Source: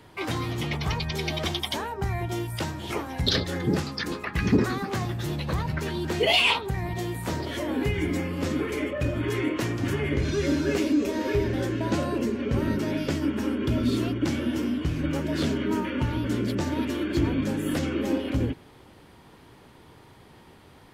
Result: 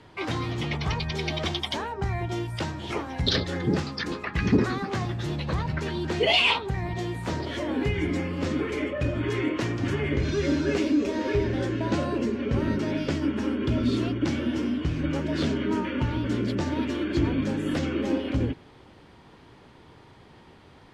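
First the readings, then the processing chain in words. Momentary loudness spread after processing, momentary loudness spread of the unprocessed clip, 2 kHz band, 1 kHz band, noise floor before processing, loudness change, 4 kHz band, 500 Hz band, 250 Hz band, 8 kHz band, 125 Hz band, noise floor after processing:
6 LU, 6 LU, 0.0 dB, 0.0 dB, -52 dBFS, 0.0 dB, -0.5 dB, 0.0 dB, 0.0 dB, -4.5 dB, 0.0 dB, -52 dBFS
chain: low-pass 6.2 kHz 12 dB/octave

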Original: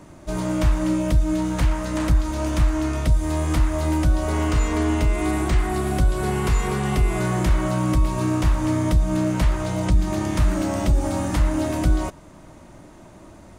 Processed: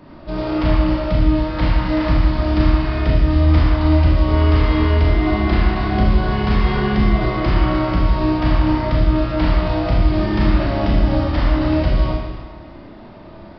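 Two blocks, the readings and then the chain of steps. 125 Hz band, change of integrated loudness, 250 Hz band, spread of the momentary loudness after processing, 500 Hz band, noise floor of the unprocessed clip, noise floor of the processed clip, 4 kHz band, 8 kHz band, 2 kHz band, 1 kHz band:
+5.0 dB, +5.0 dB, +4.5 dB, 4 LU, +5.0 dB, -45 dBFS, -38 dBFS, +6.0 dB, under -20 dB, +5.0 dB, +5.0 dB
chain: Schroeder reverb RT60 1.4 s, combs from 26 ms, DRR -5 dB; resampled via 11.025 kHz

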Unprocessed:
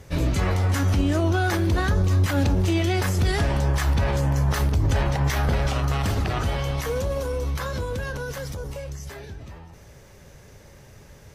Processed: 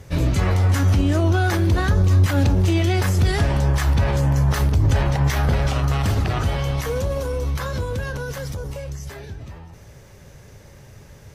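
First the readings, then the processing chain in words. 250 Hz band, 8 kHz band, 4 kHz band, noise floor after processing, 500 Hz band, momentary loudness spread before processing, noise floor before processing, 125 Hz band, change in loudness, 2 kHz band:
+2.5 dB, +1.5 dB, +1.5 dB, -45 dBFS, +1.5 dB, 12 LU, -48 dBFS, +4.5 dB, +3.5 dB, +1.5 dB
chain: peaking EQ 110 Hz +4 dB 1.1 oct; trim +1.5 dB

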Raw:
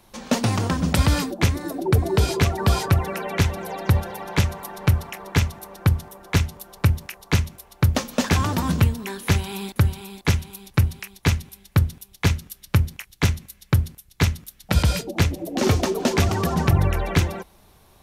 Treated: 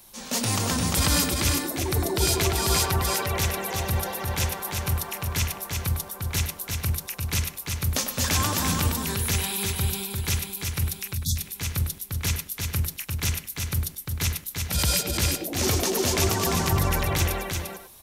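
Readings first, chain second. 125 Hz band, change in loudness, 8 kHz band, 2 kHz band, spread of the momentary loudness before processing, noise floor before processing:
-6.5 dB, -2.5 dB, +7.5 dB, -2.0 dB, 7 LU, -55 dBFS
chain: pre-emphasis filter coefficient 0.8; in parallel at -1 dB: peak limiter -20.5 dBFS, peak gain reduction 7 dB; on the sum: transient shaper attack -8 dB, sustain +2 dB; on a send: delay 347 ms -4.5 dB; on the sum: spectral selection erased 11.15–11.36 s, 260–3300 Hz; speakerphone echo 100 ms, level -7 dB; trim +4 dB

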